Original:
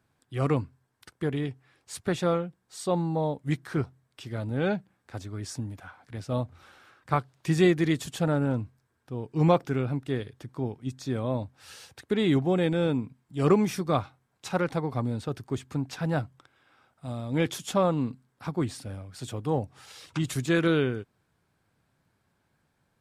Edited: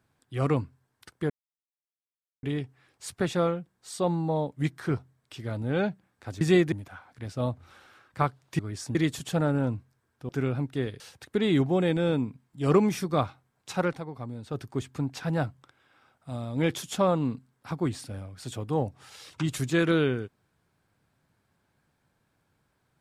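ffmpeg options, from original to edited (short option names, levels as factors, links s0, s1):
-filter_complex "[0:a]asplit=10[s0][s1][s2][s3][s4][s5][s6][s7][s8][s9];[s0]atrim=end=1.3,asetpts=PTS-STARTPTS,afade=t=out:st=1.296:d=0.004:c=hsin,apad=pad_dur=1.13[s10];[s1]atrim=start=1.3:end=5.282,asetpts=PTS-STARTPTS,afade=t=in:d=0.004:c=hsin[s11];[s2]atrim=start=7.508:end=7.822[s12];[s3]atrim=start=5.638:end=7.512[s13];[s4]atrim=start=5.278:end=5.642[s14];[s5]atrim=start=7.818:end=9.162[s15];[s6]atrim=start=9.618:end=10.332[s16];[s7]atrim=start=11.758:end=14.76,asetpts=PTS-STARTPTS,afade=t=out:st=2.882:d=0.12:silence=0.375837[s17];[s8]atrim=start=14.76:end=15.21,asetpts=PTS-STARTPTS,volume=0.376[s18];[s9]atrim=start=15.21,asetpts=PTS-STARTPTS,afade=t=in:d=0.12:silence=0.375837[s19];[s10][s11]concat=n=2:v=0:a=1[s20];[s20][s12]acrossfade=d=0.004:c1=hsin:c2=hsin[s21];[s21][s13]acrossfade=d=0.004:c1=hsin:c2=hsin[s22];[s22][s14]acrossfade=d=0.004:c1=hsin:c2=hsin[s23];[s23][s15]acrossfade=d=0.004:c1=hsin:c2=hsin[s24];[s24][s16]acrossfade=d=0.004:c1=hsin:c2=hsin[s25];[s17][s18][s19]concat=n=3:v=0:a=1[s26];[s25][s26]acrossfade=d=0.004:c1=hsin:c2=hsin"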